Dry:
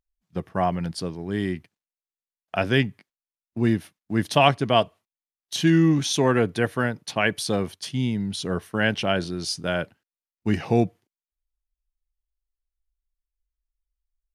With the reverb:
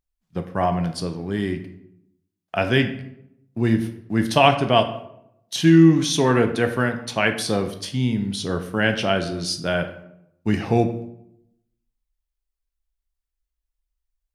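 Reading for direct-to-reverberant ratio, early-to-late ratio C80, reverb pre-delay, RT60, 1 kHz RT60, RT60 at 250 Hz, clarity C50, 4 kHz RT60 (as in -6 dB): 6.5 dB, 13.5 dB, 12 ms, 0.80 s, 0.70 s, 0.95 s, 10.0 dB, 0.50 s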